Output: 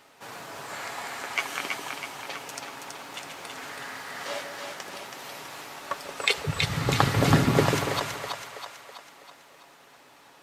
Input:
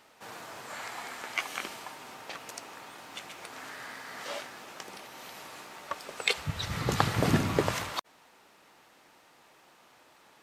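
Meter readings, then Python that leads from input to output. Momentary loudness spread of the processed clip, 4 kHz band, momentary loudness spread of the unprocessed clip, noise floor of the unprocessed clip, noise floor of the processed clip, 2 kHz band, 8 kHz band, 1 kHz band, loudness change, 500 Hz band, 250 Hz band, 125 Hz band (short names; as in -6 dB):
17 LU, +5.0 dB, 17 LU, -60 dBFS, -55 dBFS, +5.5 dB, +5.0 dB, +5.0 dB, +5.0 dB, +5.5 dB, +5.0 dB, +6.5 dB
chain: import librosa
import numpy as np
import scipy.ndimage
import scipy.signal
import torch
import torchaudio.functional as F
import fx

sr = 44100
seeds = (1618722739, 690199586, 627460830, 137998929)

y = x + 0.34 * np.pad(x, (int(7.2 * sr / 1000.0), 0))[:len(x)]
y = fx.echo_split(y, sr, split_hz=550.0, low_ms=142, high_ms=326, feedback_pct=52, wet_db=-4.5)
y = y * librosa.db_to_amplitude(3.0)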